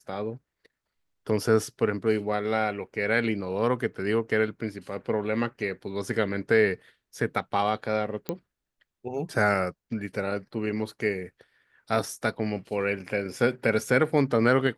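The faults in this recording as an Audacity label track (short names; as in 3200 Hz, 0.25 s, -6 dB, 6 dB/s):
8.290000	8.290000	pop -15 dBFS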